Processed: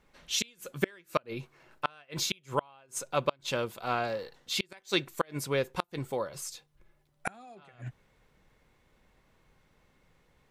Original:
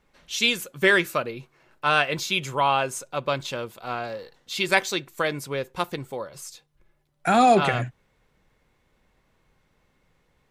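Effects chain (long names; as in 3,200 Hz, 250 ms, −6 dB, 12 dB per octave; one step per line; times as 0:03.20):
gate with flip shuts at −13 dBFS, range −34 dB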